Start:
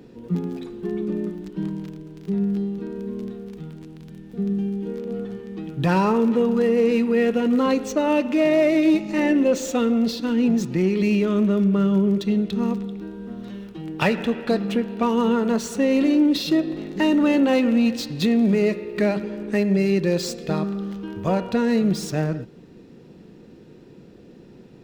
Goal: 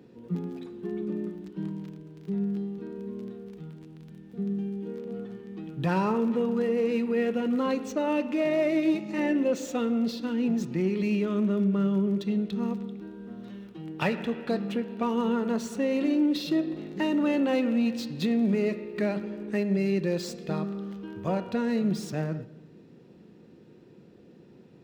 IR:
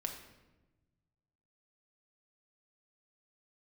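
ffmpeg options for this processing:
-filter_complex "[0:a]highpass=71,asplit=2[a][b];[1:a]atrim=start_sample=2205,lowpass=4.6k[c];[b][c]afir=irnorm=-1:irlink=0,volume=-9dB[d];[a][d]amix=inputs=2:normalize=0,volume=-9dB"

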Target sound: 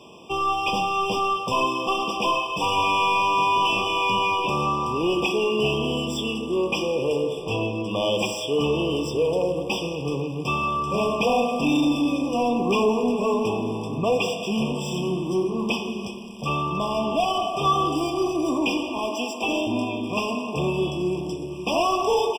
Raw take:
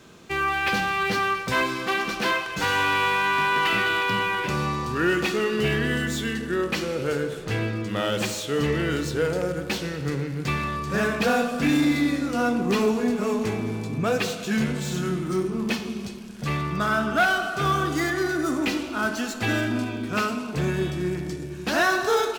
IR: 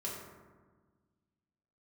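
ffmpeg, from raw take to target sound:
-filter_complex "[0:a]asettb=1/sr,asplit=3[a][b][c];[a]atrim=end=18.984[d];[b]atrim=start=18.98:end=19.67,asetpts=PTS-STARTPTS,afade=t=in:d=0.004:c=qsin,afade=t=out:st=0.686:d=0.004:c=qsin,highpass=f=240:w=0.5412,highpass=f=240:w=1.3066[e];[c]atrim=start=19.666[f];[d][e]acrossfade=d=0.004:c1=hsin:c2=qsin[g];[g][f]acrossfade=d=0.004:c1=qsin:c2=hsin,asplit=2[h][i];[i]aecho=0:1:372:0.0631[j];[h][j]amix=inputs=2:normalize=0,asplit=2[k][l];[l]highpass=f=720:p=1,volume=15dB,asoftclip=type=tanh:threshold=-11dB[m];[k][m]amix=inputs=2:normalize=0,lowpass=f=2.9k:p=1,volume=-6dB,afftfilt=real='re*eq(mod(floor(b*sr/1024/1200),2),0)':imag='im*eq(mod(floor(b*sr/1024/1200),2),0)':win_size=1024:overlap=0.75"

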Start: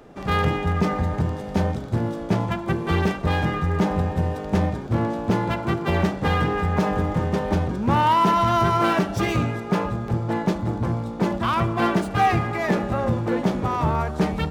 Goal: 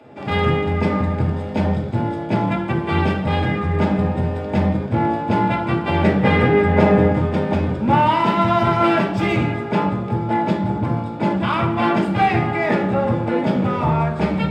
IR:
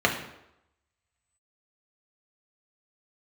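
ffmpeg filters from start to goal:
-filter_complex "[0:a]asettb=1/sr,asplit=3[a][b][c];[a]atrim=end=6.044[d];[b]atrim=start=6.04:end=7.12,asetpts=PTS-STARTPTS,afade=t=in:d=0.004:c=qsin,afade=t=out:st=1.076:d=0.004:c=qsin,equalizer=f=125:t=o:w=1:g=3,equalizer=f=250:t=o:w=1:g=3,equalizer=f=500:t=o:w=1:g=7,equalizer=f=2k:t=o:w=1:g=5[e];[c]atrim=start=7.116[f];[d][e]acrossfade=d=0.004:c1=hsin:c2=qsin[g];[g][f]acrossfade=d=0.004:c1=qsin:c2=hsin[h];[1:a]atrim=start_sample=2205,asetrate=52920,aresample=44100[i];[h][i]afir=irnorm=-1:irlink=0,volume=-10.5dB"

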